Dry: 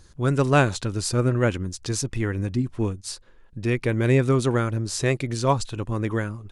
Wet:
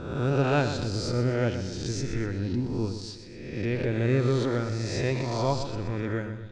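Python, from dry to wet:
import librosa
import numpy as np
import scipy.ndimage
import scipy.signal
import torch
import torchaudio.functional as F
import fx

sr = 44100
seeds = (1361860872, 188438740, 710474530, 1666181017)

y = fx.spec_swells(x, sr, rise_s=1.2)
y = scipy.signal.sosfilt(scipy.signal.butter(4, 5500.0, 'lowpass', fs=sr, output='sos'), y)
y = fx.peak_eq(y, sr, hz=1900.0, db=-5.0, octaves=2.4)
y = fx.notch(y, sr, hz=1100.0, q=7.1)
y = fx.echo_feedback(y, sr, ms=124, feedback_pct=46, wet_db=-10)
y = y * librosa.db_to_amplitude(-5.5)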